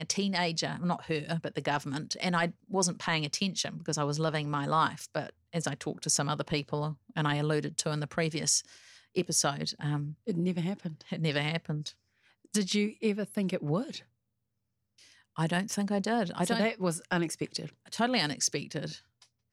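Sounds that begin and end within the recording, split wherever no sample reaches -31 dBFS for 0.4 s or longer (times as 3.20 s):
9.17–11.88 s
12.54–13.97 s
15.39–18.90 s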